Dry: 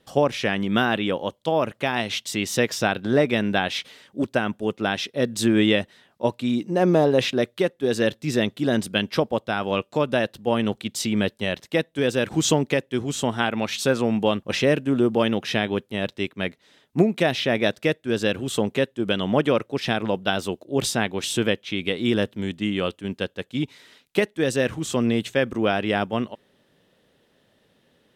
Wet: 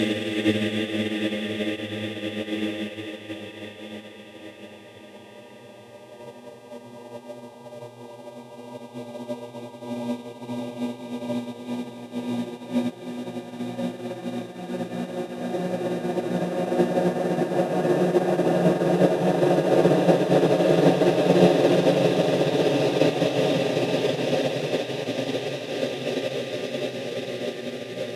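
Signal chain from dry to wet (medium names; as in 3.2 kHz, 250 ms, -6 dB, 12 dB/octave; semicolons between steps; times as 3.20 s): Paulstretch 16×, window 1.00 s, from 5.70 s; mains buzz 400 Hz, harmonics 32, -38 dBFS -5 dB/octave; upward expansion 2.5:1, over -28 dBFS; trim +3.5 dB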